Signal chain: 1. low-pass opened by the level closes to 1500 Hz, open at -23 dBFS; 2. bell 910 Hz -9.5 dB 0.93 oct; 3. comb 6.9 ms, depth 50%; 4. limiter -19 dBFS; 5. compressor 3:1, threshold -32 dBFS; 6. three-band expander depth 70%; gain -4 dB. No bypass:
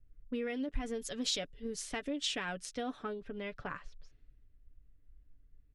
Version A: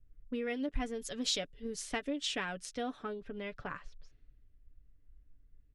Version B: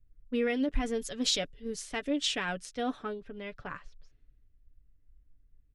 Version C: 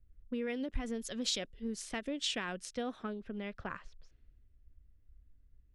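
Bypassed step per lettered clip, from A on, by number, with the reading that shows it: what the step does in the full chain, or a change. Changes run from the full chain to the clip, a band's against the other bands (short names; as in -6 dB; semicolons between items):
4, crest factor change +2.0 dB; 5, mean gain reduction 2.0 dB; 3, 125 Hz band +2.0 dB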